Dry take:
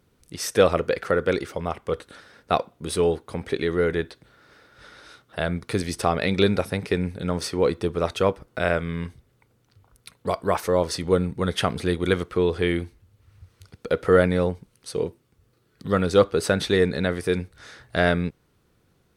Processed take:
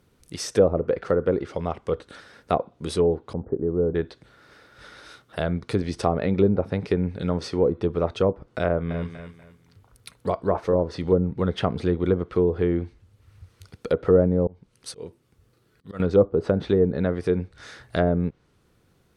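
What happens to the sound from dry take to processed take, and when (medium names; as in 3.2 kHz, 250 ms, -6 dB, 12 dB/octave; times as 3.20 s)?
3.33–3.95 s: Gaussian low-pass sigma 10 samples
8.66–10.88 s: feedback delay 242 ms, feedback 28%, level -12 dB
14.47–16.00 s: slow attack 345 ms
whole clip: low-pass that closes with the level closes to 680 Hz, closed at -16 dBFS; dynamic bell 2 kHz, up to -7 dB, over -42 dBFS, Q 0.75; trim +1.5 dB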